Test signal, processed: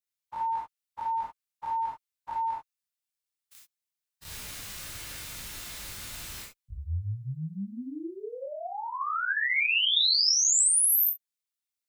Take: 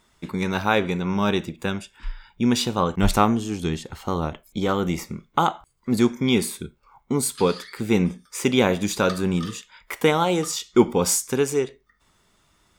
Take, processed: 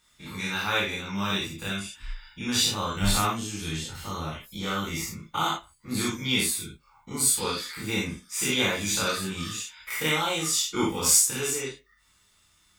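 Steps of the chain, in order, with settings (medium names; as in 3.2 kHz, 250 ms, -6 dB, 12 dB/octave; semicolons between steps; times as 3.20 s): every event in the spectrogram widened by 60 ms; amplifier tone stack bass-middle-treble 5-5-5; gated-style reverb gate 90 ms flat, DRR -4 dB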